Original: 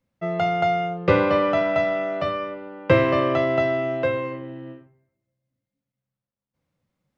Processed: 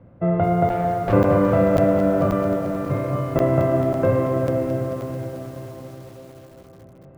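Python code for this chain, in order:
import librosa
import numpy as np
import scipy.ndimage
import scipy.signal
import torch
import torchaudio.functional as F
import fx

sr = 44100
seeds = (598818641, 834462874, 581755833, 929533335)

p1 = fx.bin_compress(x, sr, power=0.6)
p2 = scipy.signal.sosfilt(scipy.signal.butter(2, 1200.0, 'lowpass', fs=sr, output='sos'), p1)
p3 = fx.low_shelf(p2, sr, hz=270.0, db=10.0)
p4 = fx.tube_stage(p3, sr, drive_db=17.0, bias=0.75, at=(0.69, 1.13))
p5 = fx.stiff_resonator(p4, sr, f0_hz=140.0, decay_s=0.22, stiffness=0.002, at=(2.56, 3.36))
p6 = fx.chorus_voices(p5, sr, voices=4, hz=1.3, base_ms=19, depth_ms=3.0, mix_pct=25)
p7 = fx.highpass(p6, sr, hz=80.0, slope=24, at=(4.12, 4.67))
p8 = p7 + fx.echo_diffused(p7, sr, ms=451, feedback_pct=55, wet_db=-7.5, dry=0)
p9 = fx.buffer_crackle(p8, sr, first_s=0.69, period_s=0.54, block=512, kind='zero')
y = fx.echo_crushed(p9, sr, ms=220, feedback_pct=80, bits=7, wet_db=-11.5)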